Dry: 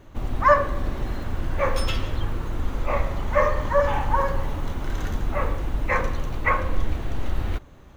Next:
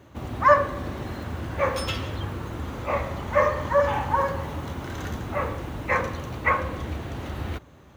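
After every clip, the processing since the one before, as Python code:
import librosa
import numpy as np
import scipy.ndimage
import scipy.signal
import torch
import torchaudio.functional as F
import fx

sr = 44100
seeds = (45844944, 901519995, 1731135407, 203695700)

y = scipy.signal.sosfilt(scipy.signal.butter(4, 71.0, 'highpass', fs=sr, output='sos'), x)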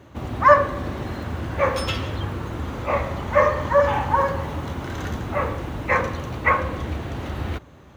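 y = fx.high_shelf(x, sr, hz=7700.0, db=-5.0)
y = y * 10.0 ** (3.5 / 20.0)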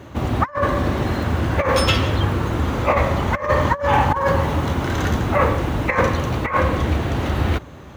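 y = fx.over_compress(x, sr, threshold_db=-22.0, ratio=-0.5)
y = y * 10.0 ** (6.0 / 20.0)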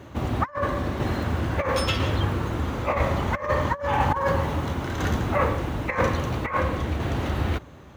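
y = fx.tremolo_shape(x, sr, shape='saw_down', hz=1.0, depth_pct=35)
y = y * 10.0 ** (-4.0 / 20.0)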